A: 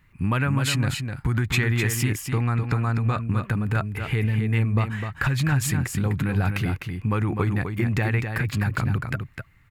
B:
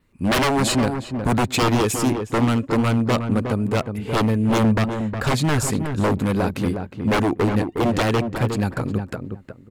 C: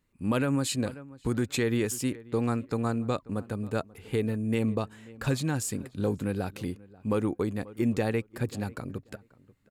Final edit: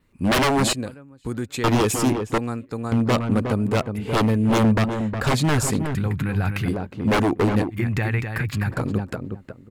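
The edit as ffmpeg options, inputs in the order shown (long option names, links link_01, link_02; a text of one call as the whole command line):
ffmpeg -i take0.wav -i take1.wav -i take2.wav -filter_complex "[2:a]asplit=2[link_01][link_02];[0:a]asplit=2[link_03][link_04];[1:a]asplit=5[link_05][link_06][link_07][link_08][link_09];[link_05]atrim=end=0.732[link_10];[link_01]atrim=start=0.728:end=1.642[link_11];[link_06]atrim=start=1.638:end=2.382[link_12];[link_02]atrim=start=2.378:end=2.922[link_13];[link_07]atrim=start=2.918:end=5.952[link_14];[link_03]atrim=start=5.948:end=6.682[link_15];[link_08]atrim=start=6.678:end=7.76[link_16];[link_04]atrim=start=7.7:end=8.74[link_17];[link_09]atrim=start=8.68[link_18];[link_10][link_11]acrossfade=duration=0.004:curve1=hsin:curve2=hsin[link_19];[link_19][link_12]acrossfade=duration=0.004:curve1=hsin:curve2=hsin[link_20];[link_20][link_13]acrossfade=duration=0.004:curve1=hsin:curve2=hsin[link_21];[link_21][link_14]acrossfade=duration=0.004:curve1=hsin:curve2=hsin[link_22];[link_22][link_15]acrossfade=duration=0.004:curve1=hsin:curve2=hsin[link_23];[link_23][link_16]acrossfade=duration=0.004:curve1=hsin:curve2=hsin[link_24];[link_24][link_17]acrossfade=duration=0.06:curve1=tri:curve2=tri[link_25];[link_25][link_18]acrossfade=duration=0.06:curve1=tri:curve2=tri" out.wav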